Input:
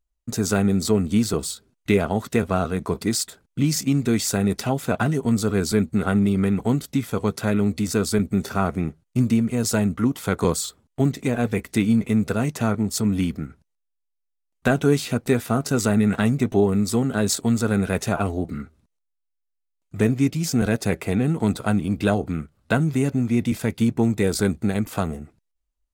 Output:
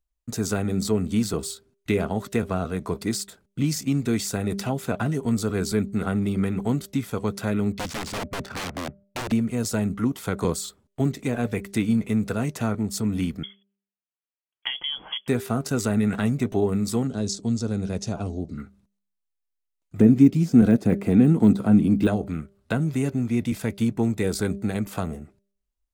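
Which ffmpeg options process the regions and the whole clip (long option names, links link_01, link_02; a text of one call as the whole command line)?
ffmpeg -i in.wav -filter_complex "[0:a]asettb=1/sr,asplit=3[link_01][link_02][link_03];[link_01]atrim=end=7.724[link_04];[link_02]atrim=start=7.72:end=9.32,asetpts=PTS-STARTPTS,afade=type=in:duration=0.004:curve=qsin,afade=type=out:start_time=1.596:duration=0.004:curve=qsin,equalizer=frequency=420:width=1.9:gain=-6.5,aeval=exprs='(mod(11.2*val(0)+1,2)-1)/11.2':channel_layout=same,adynamicsmooth=sensitivity=8:basefreq=1400[link_05];[link_03]atrim=start=9.316[link_06];[link_04][link_05]acrossfade=duration=0.004:curve1=hsin:curve2=qsin[link_07];[link_07][link_06]acrossfade=duration=0.004:curve1=qsin:curve2=hsin,asettb=1/sr,asplit=3[link_08][link_09][link_10];[link_08]atrim=end=13.434[link_11];[link_09]atrim=start=13.43:end=15.28,asetpts=PTS-STARTPTS,afade=type=in:duration=0.004:curve=qsin,afade=type=out:start_time=1.846:duration=0.004:curve=qsin,highpass=140,lowpass=frequency=3000:width_type=q:width=0.5098,lowpass=frequency=3000:width_type=q:width=0.6013,lowpass=frequency=3000:width_type=q:width=0.9,lowpass=frequency=3000:width_type=q:width=2.563,afreqshift=-3500[link_12];[link_10]atrim=start=15.276[link_13];[link_11][link_12]acrossfade=duration=0.004:curve1=hsin:curve2=qsin[link_14];[link_14][link_13]acrossfade=duration=0.004:curve1=qsin:curve2=hsin,asettb=1/sr,asplit=3[link_15][link_16][link_17];[link_15]atrim=end=17.074[link_18];[link_16]atrim=start=17.07:end=18.58,asetpts=PTS-STARTPTS,afade=type=in:duration=0.004:curve=qsin,afade=type=out:start_time=1.506:duration=0.004:curve=qsin,lowpass=frequency=5600:width_type=q:width=2.4,equalizer=frequency=1700:width=0.5:gain=-13.5[link_19];[link_17]atrim=start=18.576[link_20];[link_18][link_19]acrossfade=duration=0.004:curve1=hsin:curve2=qsin[link_21];[link_21][link_20]acrossfade=duration=0.004:curve1=qsin:curve2=hsin,asettb=1/sr,asplit=3[link_22][link_23][link_24];[link_22]atrim=end=19.994[link_25];[link_23]atrim=start=19.99:end=22.07,asetpts=PTS-STARTPTS,afade=type=in:duration=0.004:curve=qsin,afade=type=out:start_time=2.076:duration=0.004:curve=qsin,deesser=0.95,equalizer=frequency=240:width_type=o:width=1.5:gain=10.5[link_26];[link_24]atrim=start=22.066[link_27];[link_25][link_26]acrossfade=duration=0.004:curve1=hsin:curve2=qsin[link_28];[link_28][link_27]acrossfade=duration=0.004:curve1=qsin:curve2=hsin,bandreject=frequency=198.4:width_type=h:width=4,bandreject=frequency=396.8:width_type=h:width=4,bandreject=frequency=595.2:width_type=h:width=4,acrossover=split=490[link_29][link_30];[link_30]acompressor=threshold=-24dB:ratio=6[link_31];[link_29][link_31]amix=inputs=2:normalize=0,volume=-3dB" out.wav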